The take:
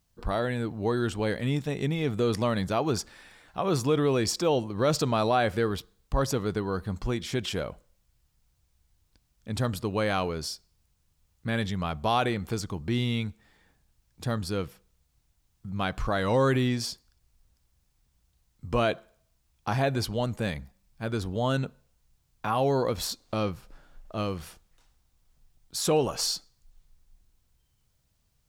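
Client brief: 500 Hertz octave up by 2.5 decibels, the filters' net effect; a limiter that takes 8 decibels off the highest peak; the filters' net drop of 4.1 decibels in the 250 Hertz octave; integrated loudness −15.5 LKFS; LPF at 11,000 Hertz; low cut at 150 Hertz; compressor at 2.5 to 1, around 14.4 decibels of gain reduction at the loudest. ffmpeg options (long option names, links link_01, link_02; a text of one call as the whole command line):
ffmpeg -i in.wav -af "highpass=150,lowpass=11000,equalizer=frequency=250:width_type=o:gain=-6,equalizer=frequency=500:width_type=o:gain=4.5,acompressor=threshold=-41dB:ratio=2.5,volume=27dB,alimiter=limit=-3dB:level=0:latency=1" out.wav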